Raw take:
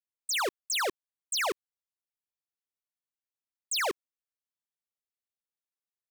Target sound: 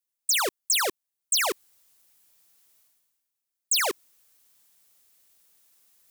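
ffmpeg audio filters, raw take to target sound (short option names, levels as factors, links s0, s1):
-af "highshelf=f=5600:g=11,areverse,acompressor=mode=upward:threshold=0.00501:ratio=2.5,areverse,volume=1.26"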